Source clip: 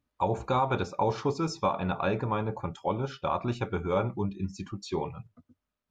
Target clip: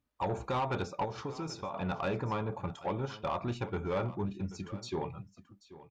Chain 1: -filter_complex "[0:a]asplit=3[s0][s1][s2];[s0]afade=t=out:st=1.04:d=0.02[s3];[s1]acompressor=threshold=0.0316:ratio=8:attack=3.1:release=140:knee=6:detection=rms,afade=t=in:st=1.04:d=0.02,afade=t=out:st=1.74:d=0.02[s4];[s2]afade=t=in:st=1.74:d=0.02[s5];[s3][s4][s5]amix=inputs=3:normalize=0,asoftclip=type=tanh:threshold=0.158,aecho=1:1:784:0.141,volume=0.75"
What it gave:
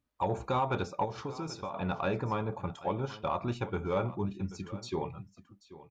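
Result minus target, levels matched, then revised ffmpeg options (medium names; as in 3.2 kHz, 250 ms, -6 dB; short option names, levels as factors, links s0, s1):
saturation: distortion -10 dB
-filter_complex "[0:a]asplit=3[s0][s1][s2];[s0]afade=t=out:st=1.04:d=0.02[s3];[s1]acompressor=threshold=0.0316:ratio=8:attack=3.1:release=140:knee=6:detection=rms,afade=t=in:st=1.04:d=0.02,afade=t=out:st=1.74:d=0.02[s4];[s2]afade=t=in:st=1.74:d=0.02[s5];[s3][s4][s5]amix=inputs=3:normalize=0,asoftclip=type=tanh:threshold=0.0668,aecho=1:1:784:0.141,volume=0.75"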